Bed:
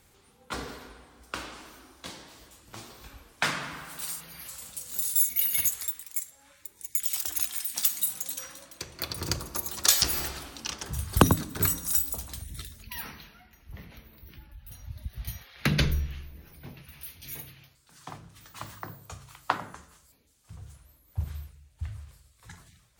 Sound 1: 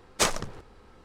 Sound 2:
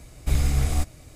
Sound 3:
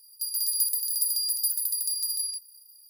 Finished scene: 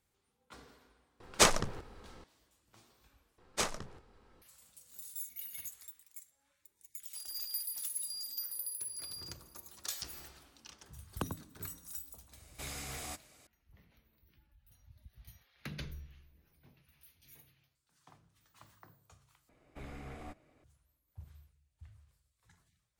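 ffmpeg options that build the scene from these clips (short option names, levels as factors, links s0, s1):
-filter_complex "[1:a]asplit=2[s0][s1];[2:a]asplit=2[s2][s3];[0:a]volume=0.112[s4];[s1]asplit=2[s5][s6];[s6]adelay=22,volume=0.266[s7];[s5][s7]amix=inputs=2:normalize=0[s8];[3:a]asplit=2[s9][s10];[s10]afreqshift=-1.1[s11];[s9][s11]amix=inputs=2:normalize=1[s12];[s2]highpass=f=800:p=1[s13];[s3]acrossover=split=200 2700:gain=0.141 1 0.112[s14][s15][s16];[s14][s15][s16]amix=inputs=3:normalize=0[s17];[s4]asplit=3[s18][s19][s20];[s18]atrim=end=3.384[s21];[s8]atrim=end=1.04,asetpts=PTS-STARTPTS,volume=0.316[s22];[s19]atrim=start=4.416:end=19.494[s23];[s17]atrim=end=1.15,asetpts=PTS-STARTPTS,volume=0.224[s24];[s20]atrim=start=20.636[s25];[s0]atrim=end=1.04,asetpts=PTS-STARTPTS,afade=t=in:d=0.004:c=hsin,afade=t=out:st=1.036:d=0.004:c=hsin,adelay=1200[s26];[s12]atrim=end=2.89,asetpts=PTS-STARTPTS,volume=0.299,afade=t=in:d=0.004:c=hsin,afade=t=out:st=2.886:d=0.004:c=hsin,adelay=6940[s27];[s13]atrim=end=1.15,asetpts=PTS-STARTPTS,volume=0.422,afade=t=in:d=0.004:c=hsin,afade=t=out:st=1.146:d=0.004:c=hsin,adelay=12320[s28];[s21][s22]acrossfade=d=0.004:c1=hsin:c2=hsin[s29];[s29][s23]acrossfade=d=0.004:c1=hsin:c2=hsin[s30];[s30][s24]acrossfade=d=0.004:c1=hsin:c2=hsin[s31];[s31][s25]acrossfade=d=0.004:c1=hsin:c2=hsin[s32];[s32][s26][s27][s28]amix=inputs=4:normalize=0"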